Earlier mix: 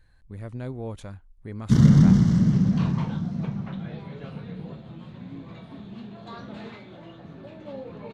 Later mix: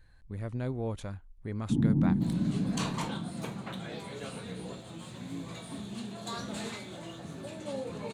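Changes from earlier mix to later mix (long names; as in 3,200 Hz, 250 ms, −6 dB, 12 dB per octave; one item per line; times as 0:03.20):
first sound: add formant resonators in series u
second sound: remove high-frequency loss of the air 290 metres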